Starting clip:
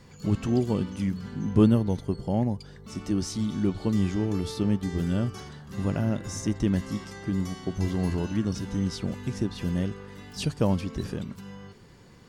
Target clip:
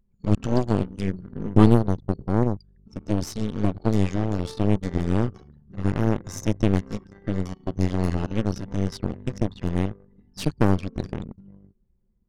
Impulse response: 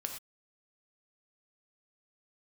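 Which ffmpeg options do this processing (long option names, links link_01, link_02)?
-af "acontrast=65,aeval=exprs='0.668*(cos(1*acos(clip(val(0)/0.668,-1,1)))-cos(1*PI/2))+0.133*(cos(3*acos(clip(val(0)/0.668,-1,1)))-cos(3*PI/2))+0.106*(cos(4*acos(clip(val(0)/0.668,-1,1)))-cos(4*PI/2))+0.0168*(cos(8*acos(clip(val(0)/0.668,-1,1)))-cos(8*PI/2))':channel_layout=same,anlmdn=1.58"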